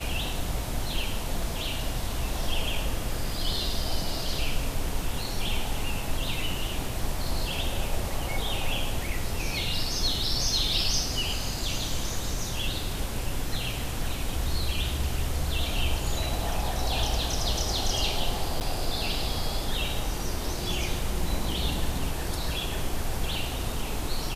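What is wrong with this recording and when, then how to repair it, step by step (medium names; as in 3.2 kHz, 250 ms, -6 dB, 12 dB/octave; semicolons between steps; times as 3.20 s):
18.60–18.61 s: dropout 9.3 ms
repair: interpolate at 18.60 s, 9.3 ms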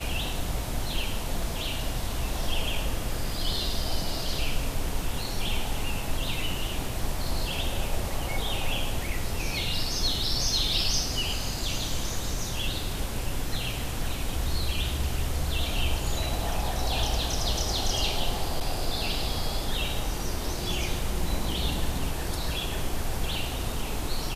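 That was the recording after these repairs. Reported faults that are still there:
nothing left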